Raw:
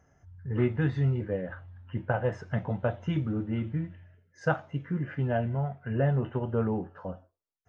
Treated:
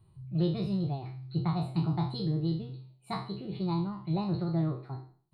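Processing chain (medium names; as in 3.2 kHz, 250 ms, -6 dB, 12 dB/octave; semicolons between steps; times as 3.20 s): spectral sustain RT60 0.64 s; FFT filter 110 Hz 0 dB, 170 Hz -22 dB, 240 Hz -5 dB, 350 Hz -18 dB, 790 Hz -14 dB, 1.6 kHz -26 dB, 2.9 kHz +1 dB, 4.5 kHz -26 dB, 6.6 kHz -7 dB; wide varispeed 1.44×; trim +5 dB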